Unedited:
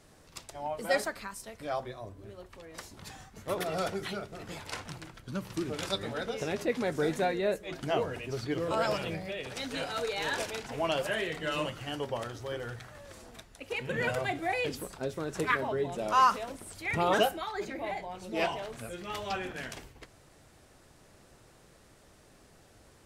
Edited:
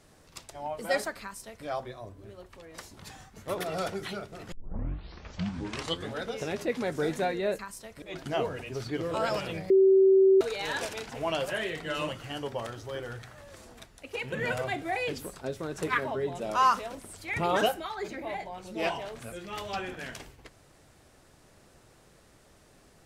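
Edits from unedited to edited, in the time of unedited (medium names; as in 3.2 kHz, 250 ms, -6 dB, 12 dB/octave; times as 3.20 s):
1.22–1.65 s: copy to 7.59 s
4.52 s: tape start 1.64 s
9.27–9.98 s: bleep 384 Hz -16 dBFS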